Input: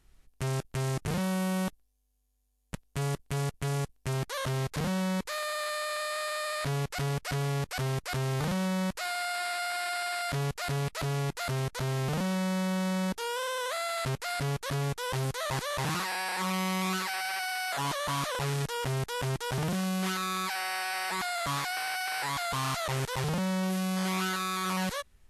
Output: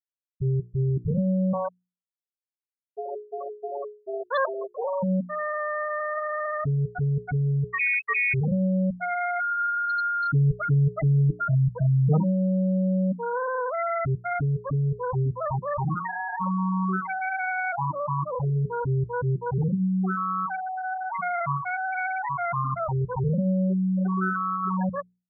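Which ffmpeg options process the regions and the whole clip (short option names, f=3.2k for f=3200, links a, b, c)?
-filter_complex "[0:a]asettb=1/sr,asplit=3[a][b][c];[a]atrim=end=1.534[d];[b]atrim=start=1.53:end=5.03,asetpts=PTS-STARTPTS,afade=t=in:d=0.004:c=qsin,afade=t=out:st=3.496:d=0.004:c=qsin,highpass=f=420:w=0.5412,highpass=f=420:w=1.3066,acontrast=27[e];[c]atrim=start=5.026[f];[d][e]acrossfade=d=0.004:c1=hsin:c2=qsin[g];[g][f]acrossfade=d=0.004:c1=qsin:c2=hsin,asettb=1/sr,asplit=3[h][i][j];[h]atrim=end=7.714[k];[i]atrim=start=7.71:end=8.34,asetpts=PTS-STARTPTS,afade=t=in:d=0.004:c=qsin,afade=t=out:st=0.626:d=0.004:c=qsin,aecho=1:1:2.9:0.89,atrim=end_sample=27783,lowpass=f=2.2k:t=q:w=0.5098,lowpass=f=2.2k:t=q:w=0.6013,lowpass=f=2.2k:t=q:w=0.9,lowpass=f=2.2k:t=q:w=2.563,afreqshift=-2600[l];[j]atrim=start=8.336[m];[k][l]acrossfade=d=0.004:c1=hsin:c2=qsin[n];[n][m]acrossfade=d=0.004:c1=qsin:c2=hsin,asettb=1/sr,asplit=3[o][p][q];[o]atrim=end=9.394[r];[p]atrim=start=9.39:end=12.24,asetpts=PTS-STARTPTS,afade=t=in:d=0.004:c=qsin,afade=t=out:st=2.846:d=0.004:c=qsin,bandreject=f=4.6k:w=22,aecho=1:1:6.4:0.72,atrim=end_sample=125685[s];[q]atrim=start=12.236[t];[r][s]acrossfade=d=0.004:c1=hsin:c2=qsin[u];[u][t]acrossfade=d=0.004:c1=qsin:c2=hsin,asettb=1/sr,asplit=3[v][w][x];[v]atrim=end=17.844[y];[w]atrim=start=17.84:end=18.56,asetpts=PTS-STARTPTS,afade=t=in:d=0.004:c=qsin,afade=t=out:st=0.716:d=0.004:c=qsin,equalizer=f=3.6k:t=o:w=1.3:g=-6.5,adynamicsmooth=sensitivity=4:basefreq=1.7k[z];[x]atrim=start=18.556[aa];[y][z]acrossfade=d=0.004:c1=hsin:c2=qsin[ab];[ab][aa]acrossfade=d=0.004:c1=qsin:c2=hsin,afftfilt=real='re*gte(hypot(re,im),0.1)':imag='im*gte(hypot(re,im),0.1)':win_size=1024:overlap=0.75,bandreject=f=60:t=h:w=6,bandreject=f=120:t=h:w=6,bandreject=f=180:t=h:w=6,bandreject=f=240:t=h:w=6,bandreject=f=300:t=h:w=6,bandreject=f=360:t=h:w=6,bandreject=f=420:t=h:w=6,volume=8dB"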